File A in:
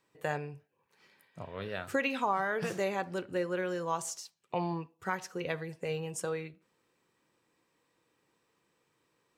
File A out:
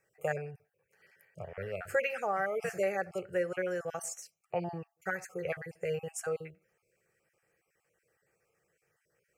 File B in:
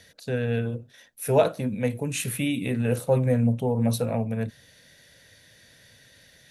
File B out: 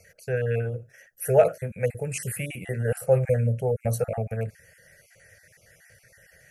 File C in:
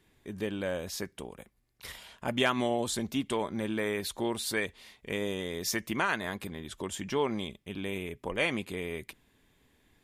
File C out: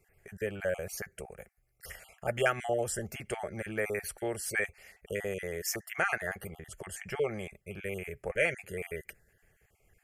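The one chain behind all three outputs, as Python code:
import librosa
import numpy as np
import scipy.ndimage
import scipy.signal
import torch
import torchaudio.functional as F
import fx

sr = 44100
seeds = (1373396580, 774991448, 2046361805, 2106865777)

y = fx.spec_dropout(x, sr, seeds[0], share_pct=23)
y = fx.fixed_phaser(y, sr, hz=1000.0, stages=6)
y = y * librosa.db_to_amplitude(3.0)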